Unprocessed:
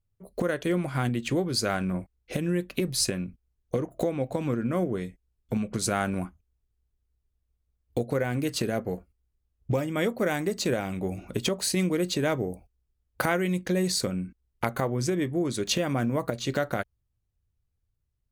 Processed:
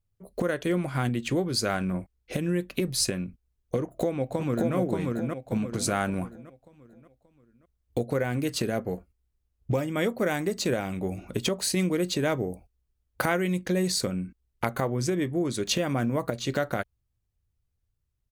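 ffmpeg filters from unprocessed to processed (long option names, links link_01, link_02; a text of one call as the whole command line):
ffmpeg -i in.wav -filter_complex "[0:a]asplit=2[link_01][link_02];[link_02]afade=type=in:start_time=3.81:duration=0.01,afade=type=out:start_time=4.75:duration=0.01,aecho=0:1:580|1160|1740|2320|2900:0.794328|0.317731|0.127093|0.050837|0.0203348[link_03];[link_01][link_03]amix=inputs=2:normalize=0" out.wav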